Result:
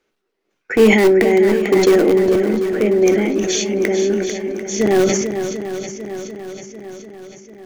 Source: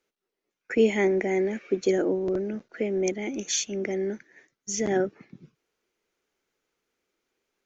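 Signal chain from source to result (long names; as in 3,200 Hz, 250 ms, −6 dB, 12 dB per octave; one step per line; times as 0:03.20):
high-shelf EQ 5,500 Hz −10 dB
in parallel at −11.5 dB: wrap-around overflow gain 18 dB
on the sum: feedback echo with a long and a short gap by turns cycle 743 ms, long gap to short 1.5 to 1, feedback 52%, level −9 dB
convolution reverb, pre-delay 3 ms, DRR 11 dB
level that may fall only so fast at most 34 dB per second
level +7.5 dB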